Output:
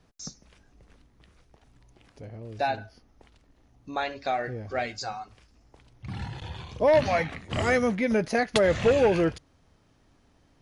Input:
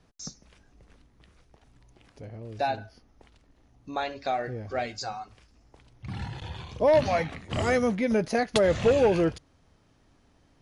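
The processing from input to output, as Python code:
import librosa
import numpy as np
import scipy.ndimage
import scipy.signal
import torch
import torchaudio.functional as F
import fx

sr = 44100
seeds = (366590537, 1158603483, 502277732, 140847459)

y = fx.dynamic_eq(x, sr, hz=1900.0, q=1.3, threshold_db=-42.0, ratio=4.0, max_db=4)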